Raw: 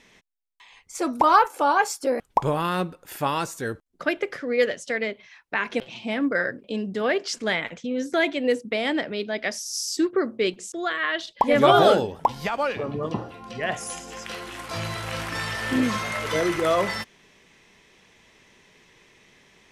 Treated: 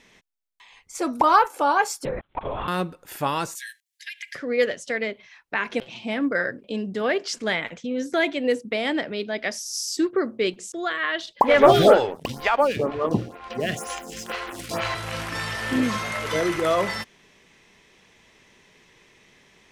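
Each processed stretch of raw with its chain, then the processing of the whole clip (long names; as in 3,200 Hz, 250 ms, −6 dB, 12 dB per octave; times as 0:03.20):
0:02.05–0:02.68: parametric band 88 Hz −13 dB 2.3 octaves + downward compressor 2.5 to 1, threshold −25 dBFS + linear-prediction vocoder at 8 kHz whisper
0:03.55–0:04.35: linear-phase brick-wall high-pass 1,600 Hz + high-shelf EQ 2,100 Hz +9 dB + downward compressor, threshold −32 dBFS
0:11.40–0:14.95: leveller curve on the samples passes 2 + phaser with staggered stages 2.1 Hz
whole clip: no processing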